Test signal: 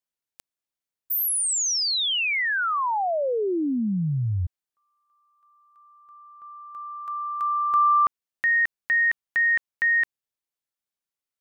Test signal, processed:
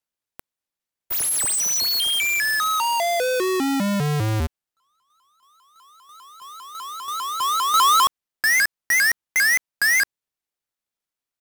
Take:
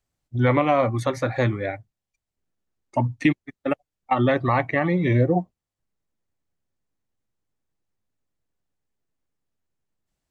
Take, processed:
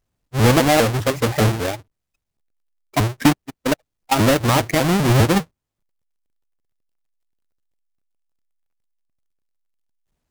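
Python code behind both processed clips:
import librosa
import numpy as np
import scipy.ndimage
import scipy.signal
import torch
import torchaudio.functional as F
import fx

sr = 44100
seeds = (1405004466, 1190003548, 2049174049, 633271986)

y = fx.halfwave_hold(x, sr)
y = fx.vibrato_shape(y, sr, shape='saw_up', rate_hz=5.0, depth_cents=250.0)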